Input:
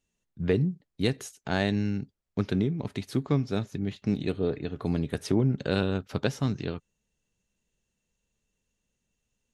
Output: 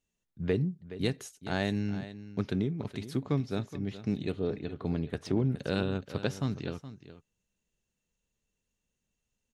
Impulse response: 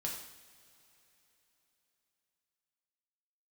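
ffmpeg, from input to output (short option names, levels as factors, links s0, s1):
-filter_complex "[0:a]aecho=1:1:420:0.2,asettb=1/sr,asplit=3[s0][s1][s2];[s0]atrim=end=4.664[s3];[s1]atrim=start=4.66:end=5.36,asetpts=PTS-STARTPTS,afade=t=in:d=0.004:c=qsin,afade=t=out:st=0.696:d=0.004:c=qsin,adynamicsmooth=sensitivity=3:basefreq=6100[s4];[s2]atrim=start=5.356[s5];[s3][s4]acrossfade=d=0.004:c1=hsin:c2=qsin[s6];[s6][s5]acrossfade=d=0.004:c1=qsin:c2=hsin,volume=0.631"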